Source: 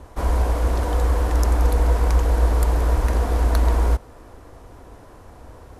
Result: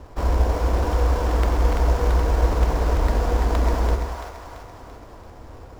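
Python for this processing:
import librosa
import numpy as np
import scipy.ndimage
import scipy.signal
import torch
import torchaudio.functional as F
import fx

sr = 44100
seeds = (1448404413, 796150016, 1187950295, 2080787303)

y = fx.sample_hold(x, sr, seeds[0], rate_hz=6300.0, jitter_pct=20)
y = fx.high_shelf(y, sr, hz=5500.0, db=-9.5)
y = fx.echo_split(y, sr, split_hz=620.0, low_ms=95, high_ms=337, feedback_pct=52, wet_db=-5)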